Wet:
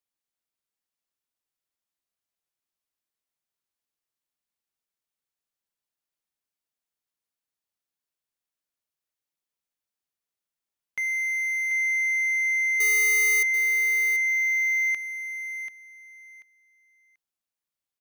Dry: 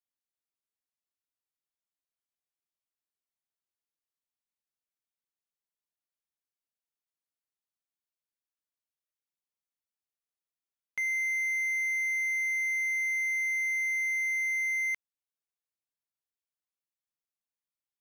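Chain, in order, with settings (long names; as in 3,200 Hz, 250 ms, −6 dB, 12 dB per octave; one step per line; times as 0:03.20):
0:12.80–0:13.43: each half-wave held at its own peak
repeating echo 737 ms, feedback 21%, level −9 dB
level +3 dB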